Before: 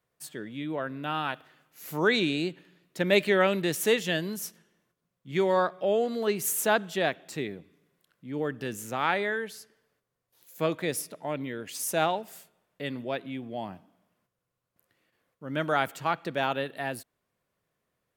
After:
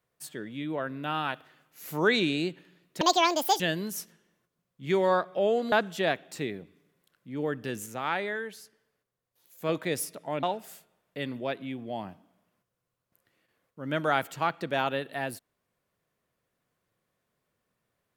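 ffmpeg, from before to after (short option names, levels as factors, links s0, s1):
-filter_complex "[0:a]asplit=7[s0][s1][s2][s3][s4][s5][s6];[s0]atrim=end=3.014[s7];[s1]atrim=start=3.01:end=4.06,asetpts=PTS-STARTPTS,asetrate=78498,aresample=44100,atrim=end_sample=26014,asetpts=PTS-STARTPTS[s8];[s2]atrim=start=4.056:end=6.182[s9];[s3]atrim=start=6.688:end=8.832[s10];[s4]atrim=start=8.828:end=10.662,asetpts=PTS-STARTPTS,volume=0.668[s11];[s5]atrim=start=10.658:end=11.402[s12];[s6]atrim=start=12.068[s13];[s7][s8]acrossfade=d=0.004:c1=hsin:c2=hsin[s14];[s14][s9]acrossfade=d=0.004:c1=hsin:c2=hsin[s15];[s15][s10]acrossfade=d=0.004:c1=hsin:c2=hsin[s16];[s16][s11]acrossfade=d=0.004:c1=hsin:c2=hsin[s17];[s17][s12]acrossfade=d=0.004:c1=hsin:c2=hsin[s18];[s18][s13]acrossfade=d=0.004:c1=hsin:c2=hsin"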